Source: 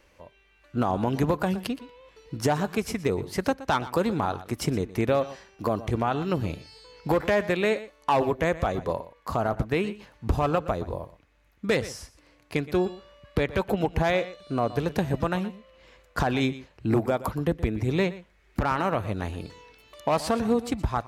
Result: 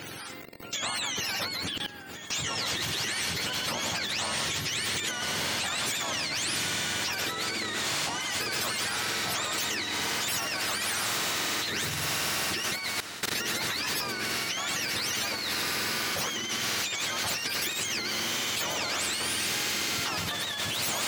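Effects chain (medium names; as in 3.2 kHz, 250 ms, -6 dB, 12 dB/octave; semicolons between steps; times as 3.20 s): spectrum inverted on a logarithmic axis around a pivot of 900 Hz; in parallel at -3 dB: compression 12:1, threshold -38 dBFS, peak gain reduction 18.5 dB; on the sum: frequency weighting D; on a send at -21 dB: reverberation RT60 0.95 s, pre-delay 5 ms; on the sum: vibrato 6.1 Hz 8.4 cents; bass shelf 110 Hz +9 dB; echo that smears into a reverb 1901 ms, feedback 47%, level -12 dB; peak limiter -17 dBFS, peak gain reduction 10.5 dB; level held to a coarse grid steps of 19 dB; spectrum-flattening compressor 2:1; trim +8.5 dB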